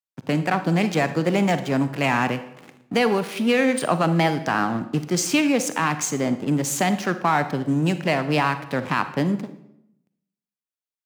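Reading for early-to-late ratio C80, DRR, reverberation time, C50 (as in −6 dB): 15.0 dB, 11.0 dB, 0.80 s, 12.0 dB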